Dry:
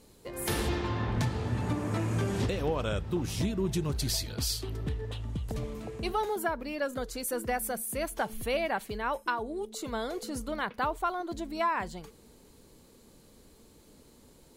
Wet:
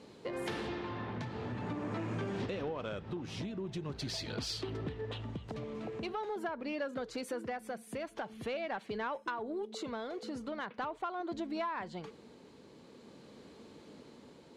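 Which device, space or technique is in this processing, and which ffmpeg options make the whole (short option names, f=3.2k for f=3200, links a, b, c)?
AM radio: -af "highpass=150,lowpass=3.8k,acompressor=threshold=-40dB:ratio=5,asoftclip=type=tanh:threshold=-32.5dB,tremolo=f=0.44:d=0.3,volume=6dB"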